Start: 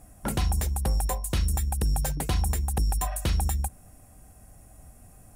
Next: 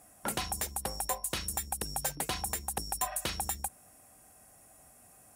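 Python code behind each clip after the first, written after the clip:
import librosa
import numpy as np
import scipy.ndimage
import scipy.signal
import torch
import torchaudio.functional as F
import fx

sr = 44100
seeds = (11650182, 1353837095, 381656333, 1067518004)

y = fx.highpass(x, sr, hz=630.0, slope=6)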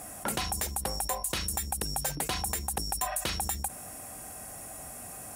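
y = fx.env_flatten(x, sr, amount_pct=50)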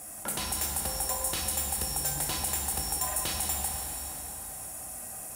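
y = fx.high_shelf(x, sr, hz=4200.0, db=7.5)
y = fx.rev_plate(y, sr, seeds[0], rt60_s=4.3, hf_ratio=0.75, predelay_ms=0, drr_db=-1.0)
y = y * 10.0 ** (-6.0 / 20.0)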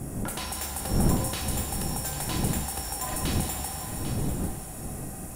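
y = fx.dmg_wind(x, sr, seeds[1], corner_hz=200.0, level_db=-33.0)
y = fx.high_shelf(y, sr, hz=4900.0, db=-6.0)
y = y + 10.0 ** (-10.0 / 20.0) * np.pad(y, (int(795 * sr / 1000.0), 0))[:len(y)]
y = y * 10.0 ** (1.5 / 20.0)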